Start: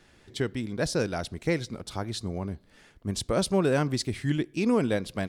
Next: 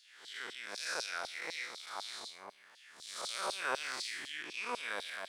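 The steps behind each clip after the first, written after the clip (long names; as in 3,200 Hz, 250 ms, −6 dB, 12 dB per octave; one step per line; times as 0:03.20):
spectrum smeared in time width 243 ms
auto-filter high-pass saw down 4 Hz 790–4,500 Hz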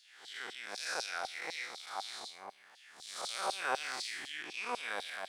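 parametric band 770 Hz +9 dB 0.2 octaves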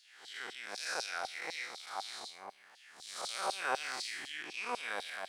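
notch filter 3,500 Hz, Q 24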